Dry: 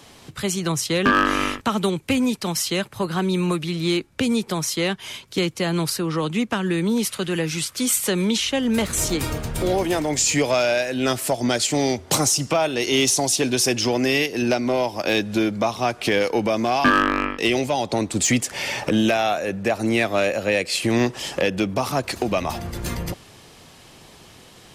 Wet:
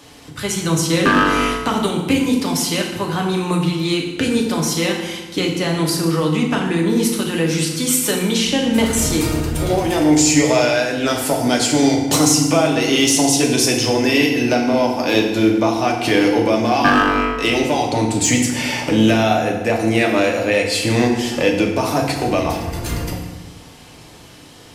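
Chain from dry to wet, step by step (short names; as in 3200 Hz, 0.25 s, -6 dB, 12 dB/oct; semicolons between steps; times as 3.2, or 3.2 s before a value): FDN reverb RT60 1.2 s, low-frequency decay 1.45×, high-frequency decay 0.75×, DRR -0.5 dB; gain +1 dB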